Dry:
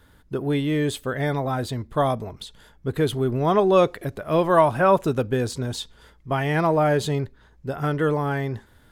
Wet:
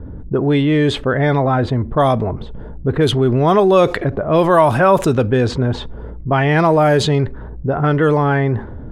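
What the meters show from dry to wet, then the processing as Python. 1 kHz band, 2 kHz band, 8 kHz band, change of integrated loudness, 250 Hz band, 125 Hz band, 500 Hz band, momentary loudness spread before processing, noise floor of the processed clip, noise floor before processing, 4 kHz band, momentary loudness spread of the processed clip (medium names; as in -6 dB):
+6.5 dB, +8.0 dB, +3.5 dB, +7.5 dB, +8.5 dB, +9.0 dB, +7.0 dB, 15 LU, -31 dBFS, -55 dBFS, +8.0 dB, 12 LU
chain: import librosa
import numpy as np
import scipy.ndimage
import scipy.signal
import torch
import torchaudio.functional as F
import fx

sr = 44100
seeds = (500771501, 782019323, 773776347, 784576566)

y = fx.env_lowpass(x, sr, base_hz=370.0, full_db=-15.0)
y = fx.env_flatten(y, sr, amount_pct=50)
y = y * 10.0 ** (4.0 / 20.0)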